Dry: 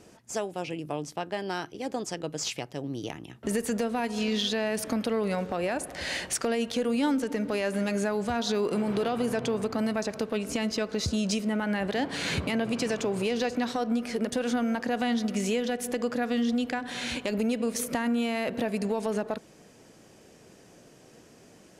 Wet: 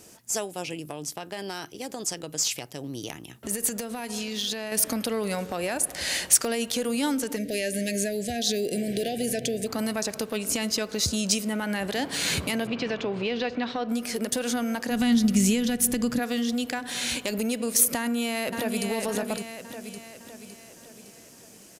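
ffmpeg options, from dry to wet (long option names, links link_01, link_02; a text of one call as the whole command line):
ffmpeg -i in.wav -filter_complex "[0:a]asettb=1/sr,asplit=3[link_01][link_02][link_03];[link_01]atrim=end=0.774[link_04];[link_02]atrim=start=0.77:end=4.72,asetpts=PTS-STARTPTS,afade=type=in:duration=0.004:curve=qsin,afade=type=out:start_time=3.946:duration=0.004:curve=qsin,acompressor=threshold=-29dB:ratio=6:attack=3.2:release=140:knee=1:detection=peak[link_05];[link_03]atrim=start=4.716[link_06];[link_04][link_05]acrossfade=duration=0.004:curve1=hsin:curve2=qsin[link_07];[link_07][link_06]acrossfade=duration=0.004:curve1=qsin:curve2=hsin,asplit=3[link_08][link_09][link_10];[link_08]afade=type=out:start_time=7.36:duration=0.02[link_11];[link_09]asuperstop=centerf=1100:order=12:qfactor=1.2,afade=type=in:start_time=7.36:duration=0.02,afade=type=out:start_time=9.66:duration=0.02[link_12];[link_10]afade=type=in:start_time=9.66:duration=0.02[link_13];[link_11][link_12][link_13]amix=inputs=3:normalize=0,asettb=1/sr,asplit=3[link_14][link_15][link_16];[link_14]atrim=end=12.674[link_17];[link_15]atrim=start=12.67:end=13.89,asetpts=PTS-STARTPTS,afade=type=in:duration=0.004:curve=qsin,afade=type=out:start_time=1.216:duration=0.004:curve=qsin,lowpass=frequency=3700:width=0.5412,lowpass=frequency=3700:width=1.3066[link_18];[link_16]atrim=start=13.886[link_19];[link_17][link_18]acrossfade=duration=0.004:curve1=hsin:curve2=qsin[link_20];[link_20][link_19]acrossfade=duration=0.004:curve1=qsin:curve2=hsin,asplit=3[link_21][link_22][link_23];[link_21]afade=type=out:start_time=14.9:duration=0.02[link_24];[link_22]asubboost=boost=6.5:cutoff=200,afade=type=in:start_time=14.9:duration=0.02,afade=type=out:start_time=16.18:duration=0.02[link_25];[link_23]afade=type=in:start_time=16.18:duration=0.02[link_26];[link_24][link_25][link_26]amix=inputs=3:normalize=0,asplit=2[link_27][link_28];[link_28]afade=type=in:start_time=17.96:duration=0.01,afade=type=out:start_time=18.86:duration=0.01,aecho=0:1:560|1120|1680|2240|2800|3360:0.595662|0.297831|0.148916|0.0744578|0.0372289|0.0186144[link_29];[link_27][link_29]amix=inputs=2:normalize=0,aemphasis=mode=production:type=75fm" out.wav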